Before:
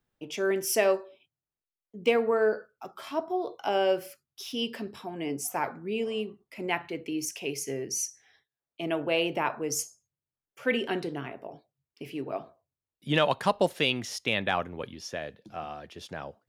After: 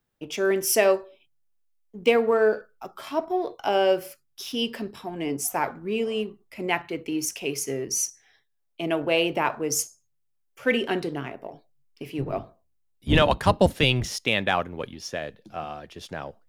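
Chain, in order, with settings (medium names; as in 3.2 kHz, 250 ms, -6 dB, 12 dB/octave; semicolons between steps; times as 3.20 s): 12.18–14.16 s: octave divider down 1 oct, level +3 dB; treble shelf 8.6 kHz +3.5 dB; in parallel at -8.5 dB: hysteresis with a dead band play -35.5 dBFS; on the sum: trim +1.5 dB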